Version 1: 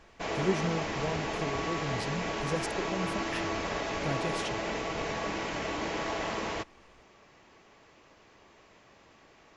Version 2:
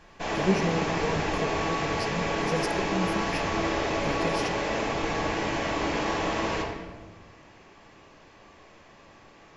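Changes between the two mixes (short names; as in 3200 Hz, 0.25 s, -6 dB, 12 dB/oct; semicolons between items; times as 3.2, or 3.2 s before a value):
speech: add ripple EQ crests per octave 0.85, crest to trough 13 dB; reverb: on, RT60 1.3 s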